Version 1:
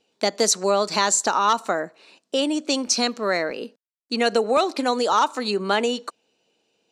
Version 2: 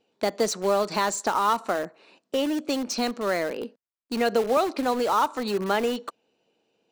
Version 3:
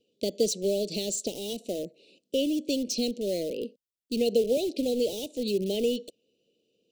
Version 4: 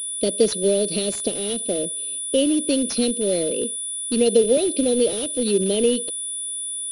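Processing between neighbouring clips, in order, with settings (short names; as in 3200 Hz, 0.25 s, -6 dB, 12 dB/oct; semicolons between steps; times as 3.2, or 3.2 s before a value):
high shelf 3200 Hz -12 dB; in parallel at -11 dB: wrapped overs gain 23.5 dB; on the sum: gain -2 dB
elliptic band-stop 530–2900 Hz, stop band 50 dB
whine 3500 Hz -43 dBFS; pulse-width modulation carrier 9800 Hz; gain +7.5 dB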